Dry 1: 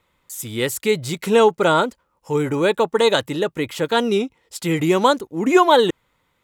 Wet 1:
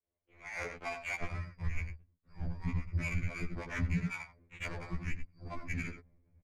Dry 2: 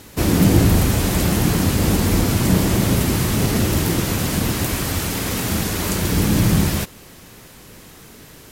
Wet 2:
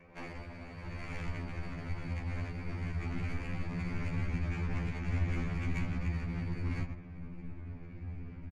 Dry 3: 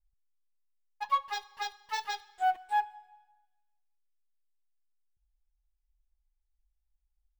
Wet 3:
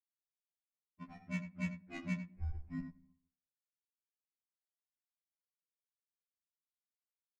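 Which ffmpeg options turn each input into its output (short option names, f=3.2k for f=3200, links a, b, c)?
-filter_complex "[0:a]afftfilt=real='real(if(lt(b,272),68*(eq(floor(b/68),0)*1+eq(floor(b/68),1)*2+eq(floor(b/68),2)*3+eq(floor(b/68),3)*0)+mod(b,68),b),0)':imag='imag(if(lt(b,272),68*(eq(floor(b/68),0)*1+eq(floor(b/68),1)*2+eq(floor(b/68),2)*3+eq(floor(b/68),3)*0)+mod(b,68),b),0)':win_size=2048:overlap=0.75,acompressor=threshold=-22dB:ratio=6,tiltshelf=f=870:g=6,asplit=2[a][b];[b]aecho=0:1:90:0.355[c];[a][c]amix=inputs=2:normalize=0,asoftclip=type=tanh:threshold=-24.5dB,lowpass=f=2.3k:t=q:w=7.6,asubboost=boost=10:cutoff=170,alimiter=limit=-18.5dB:level=0:latency=1:release=97,tremolo=f=51:d=0.571,agate=range=-33dB:threshold=-57dB:ratio=3:detection=peak,adynamicsmooth=sensitivity=3:basefreq=790,afftfilt=real='re*2*eq(mod(b,4),0)':imag='im*2*eq(mod(b,4),0)':win_size=2048:overlap=0.75"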